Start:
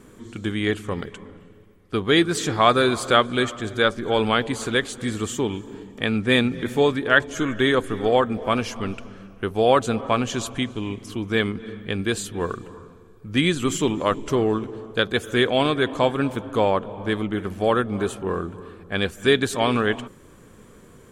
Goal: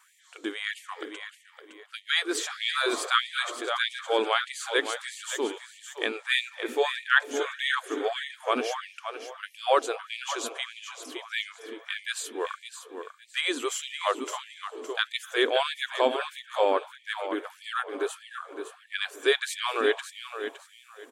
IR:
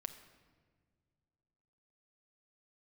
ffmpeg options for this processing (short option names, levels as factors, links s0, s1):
-af "aecho=1:1:563|1126|1689:0.355|0.0887|0.0222,afftfilt=real='re*gte(b*sr/1024,250*pow(1800/250,0.5+0.5*sin(2*PI*1.6*pts/sr)))':imag='im*gte(b*sr/1024,250*pow(1800/250,0.5+0.5*sin(2*PI*1.6*pts/sr)))':win_size=1024:overlap=0.75,volume=0.668"